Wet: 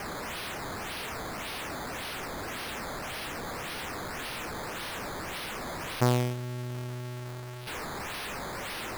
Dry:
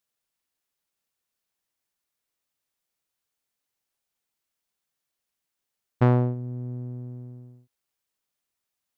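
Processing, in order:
converter with a step at zero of −30 dBFS
low-shelf EQ 460 Hz −8 dB
sample-and-hold swept by an LFO 11×, swing 100% 1.8 Hz

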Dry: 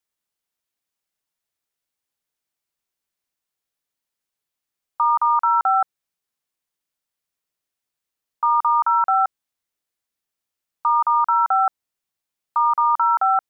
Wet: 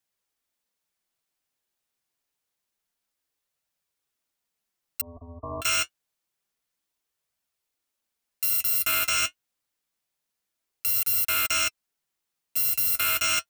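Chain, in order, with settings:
samples in bit-reversed order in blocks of 256 samples
flanger 0.27 Hz, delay 1.1 ms, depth 7.7 ms, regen −48%
0:05.01–0:05.62: linear-phase brick-wall low-pass 1,200 Hz
brickwall limiter −22 dBFS, peak gain reduction 9.5 dB
level +5.5 dB

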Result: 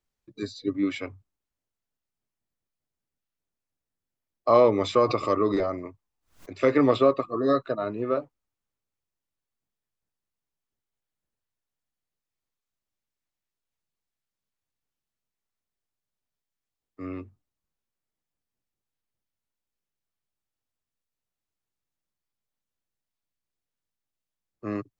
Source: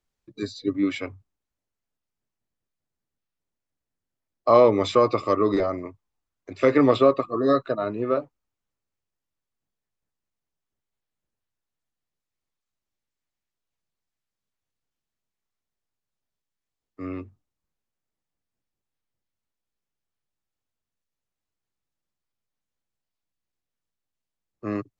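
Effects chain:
0:05.02–0:06.63: background raised ahead of every attack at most 150 dB per second
level −2.5 dB

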